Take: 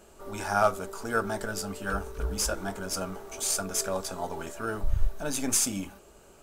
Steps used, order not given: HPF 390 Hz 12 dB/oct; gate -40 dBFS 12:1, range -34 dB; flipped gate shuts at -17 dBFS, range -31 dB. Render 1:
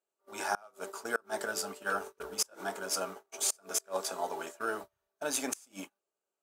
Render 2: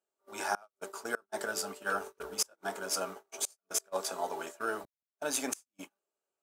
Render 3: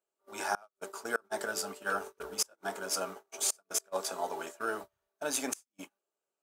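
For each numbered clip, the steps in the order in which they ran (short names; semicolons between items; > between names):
HPF > gate > flipped gate; flipped gate > HPF > gate; HPF > flipped gate > gate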